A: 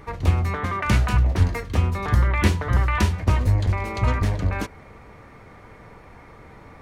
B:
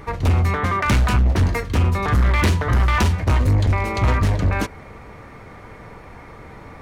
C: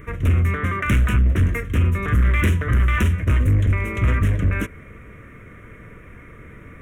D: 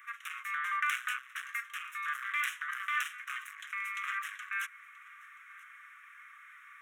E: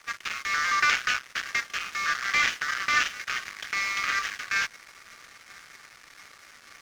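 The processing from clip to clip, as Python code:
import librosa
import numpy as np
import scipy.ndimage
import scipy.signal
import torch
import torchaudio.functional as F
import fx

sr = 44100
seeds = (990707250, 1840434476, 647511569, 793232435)

y1 = np.clip(10.0 ** (18.0 / 20.0) * x, -1.0, 1.0) / 10.0 ** (18.0 / 20.0)
y1 = F.gain(torch.from_numpy(y1), 5.5).numpy()
y2 = fx.peak_eq(y1, sr, hz=4300.0, db=-12.0, octaves=0.24)
y2 = fx.fixed_phaser(y2, sr, hz=2000.0, stages=4)
y3 = fx.rider(y2, sr, range_db=10, speed_s=2.0)
y3 = scipy.signal.sosfilt(scipy.signal.cheby1(6, 3, 1100.0, 'highpass', fs=sr, output='sos'), y3)
y3 = y3 + 10.0 ** (-22.5 / 20.0) * np.pad(y3, (int(980 * sr / 1000.0), 0))[:len(y3)]
y3 = F.gain(torch.from_numpy(y3), -4.5).numpy()
y4 = fx.cvsd(y3, sr, bps=32000)
y4 = fx.high_shelf(y4, sr, hz=4100.0, db=11.0)
y4 = np.sign(y4) * np.maximum(np.abs(y4) - 10.0 ** (-52.0 / 20.0), 0.0)
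y4 = F.gain(torch.from_numpy(y4), 8.0).numpy()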